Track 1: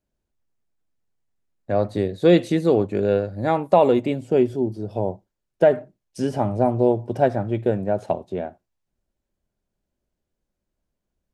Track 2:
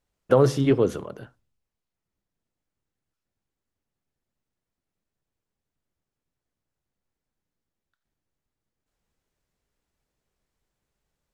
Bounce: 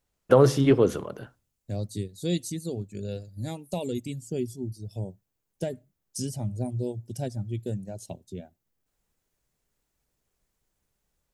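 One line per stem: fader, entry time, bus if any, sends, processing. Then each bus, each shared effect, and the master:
-12.5 dB, 0.00 s, no send, reverb removal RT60 1.2 s; FFT filter 130 Hz 0 dB, 1.2 kHz -24 dB, 6.7 kHz +10 dB; level rider gain up to 11.5 dB
+0.5 dB, 0.00 s, no send, none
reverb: none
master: treble shelf 7.2 kHz +4 dB

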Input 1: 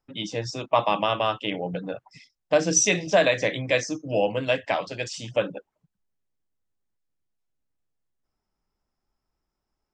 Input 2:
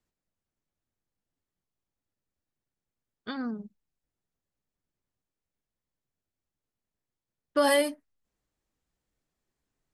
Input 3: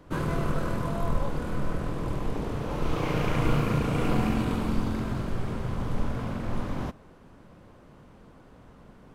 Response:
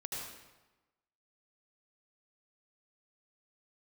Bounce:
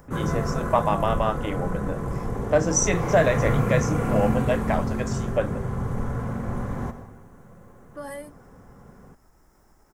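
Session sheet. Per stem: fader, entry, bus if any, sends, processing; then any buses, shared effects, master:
0.0 dB, 0.00 s, no send, upward compressor, threshold -38 dBFS
-13.5 dB, 0.40 s, no send, upward compressor, threshold -36 dBFS
+1.0 dB, 0.00 s, send -7 dB, comb of notches 310 Hz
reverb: on, RT60 1.1 s, pre-delay 71 ms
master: high-order bell 3.5 kHz -11 dB 1.3 oct

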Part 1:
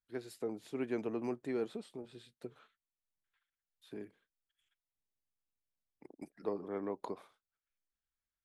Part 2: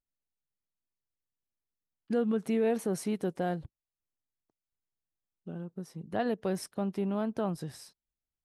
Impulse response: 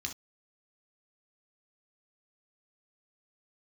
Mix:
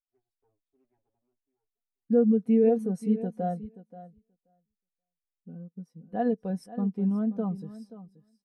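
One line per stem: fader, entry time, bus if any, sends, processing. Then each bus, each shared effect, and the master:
-12.0 dB, 0.00 s, no send, no echo send, comb filter that takes the minimum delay 7.3 ms; saturation -36 dBFS, distortion -12 dB; auto duck -16 dB, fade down 1.30 s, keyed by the second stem
+2.5 dB, 0.00 s, no send, echo send -10.5 dB, bass shelf 67 Hz +11.5 dB; comb 4.1 ms, depth 57%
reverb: none
echo: feedback delay 530 ms, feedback 16%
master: spectral contrast expander 1.5:1

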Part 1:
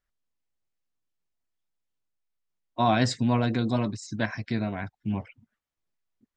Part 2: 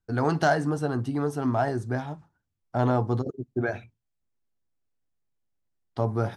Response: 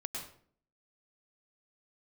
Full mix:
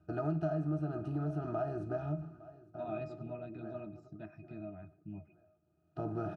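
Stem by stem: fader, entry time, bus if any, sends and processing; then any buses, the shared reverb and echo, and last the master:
-7.0 dB, 0.00 s, send -18 dB, no echo send, band-stop 3.1 kHz, Q 20
+1.0 dB, 0.00 s, send -23.5 dB, echo send -22.5 dB, spectral levelling over time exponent 0.6; treble shelf 6.6 kHz +11.5 dB; auto duck -17 dB, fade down 0.30 s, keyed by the first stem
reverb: on, RT60 0.55 s, pre-delay 97 ms
echo: feedback delay 859 ms, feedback 24%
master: pitch-class resonator D#, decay 0.11 s; compression 3:1, threshold -33 dBFS, peak gain reduction 10.5 dB

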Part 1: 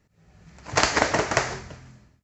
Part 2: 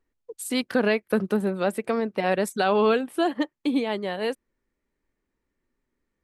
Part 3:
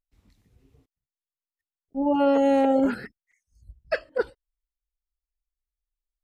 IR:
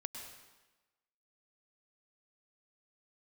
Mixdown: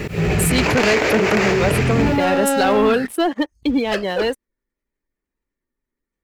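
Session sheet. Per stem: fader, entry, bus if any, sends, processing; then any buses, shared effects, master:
-11.0 dB, 0.00 s, no send, fifteen-band graphic EQ 160 Hz +4 dB, 400 Hz +12 dB, 2.5 kHz +10 dB, 6.3 kHz -5 dB; level flattener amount 100%
-1.5 dB, 0.00 s, no send, spectral gate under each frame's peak -30 dB strong; treble shelf 4.1 kHz +9 dB
+2.5 dB, 0.00 s, no send, saturation -27 dBFS, distortion -8 dB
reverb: none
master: waveshaping leveller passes 2

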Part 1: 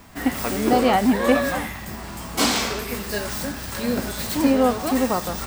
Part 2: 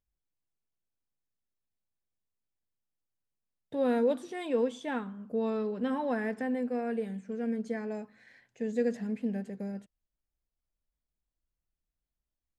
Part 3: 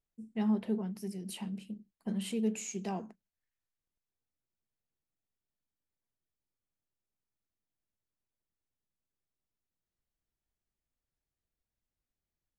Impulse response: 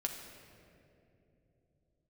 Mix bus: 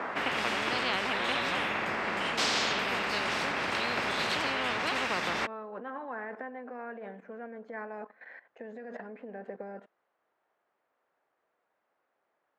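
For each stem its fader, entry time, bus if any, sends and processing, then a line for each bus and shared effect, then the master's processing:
-5.5 dB, 0.00 s, no send, none
-9.5 dB, 0.00 s, no send, peak limiter -27.5 dBFS, peak gain reduction 9 dB; level held to a coarse grid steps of 15 dB
-2.5 dB, 0.00 s, no send, none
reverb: none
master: Butterworth band-pass 880 Hz, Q 0.79; spectrum-flattening compressor 10:1

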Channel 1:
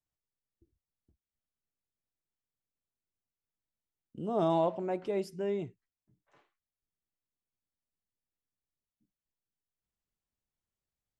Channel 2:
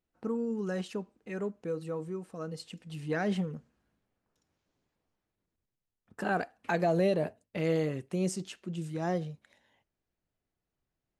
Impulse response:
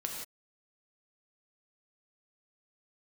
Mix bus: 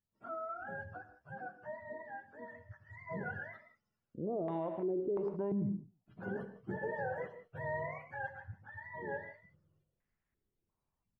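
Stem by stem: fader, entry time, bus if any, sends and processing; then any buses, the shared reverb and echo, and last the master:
4.93 s -9 dB -> 5.67 s -0.5 dB, 0.00 s, send -10 dB, echo send -14.5 dB, bass shelf 300 Hz +5.5 dB; step-sequenced low-pass 2.9 Hz 210–1900 Hz
-12.0 dB, 0.00 s, send -4.5 dB, no echo send, spectrum inverted on a logarithmic axis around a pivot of 550 Hz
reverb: on, pre-delay 3 ms
echo: feedback delay 109 ms, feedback 18%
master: peak limiter -28.5 dBFS, peak gain reduction 12 dB

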